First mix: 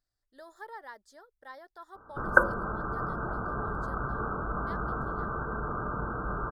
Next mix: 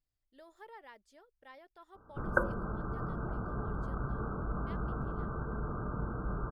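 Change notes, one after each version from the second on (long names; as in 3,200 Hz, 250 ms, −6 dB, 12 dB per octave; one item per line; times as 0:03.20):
master: add drawn EQ curve 160 Hz 0 dB, 1,700 Hz −11 dB, 2,600 Hz +11 dB, 3,900 Hz −9 dB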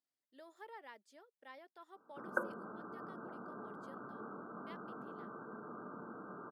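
background −6.5 dB
master: add Chebyshev high-pass filter 230 Hz, order 3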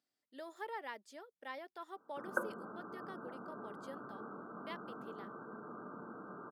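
speech +8.5 dB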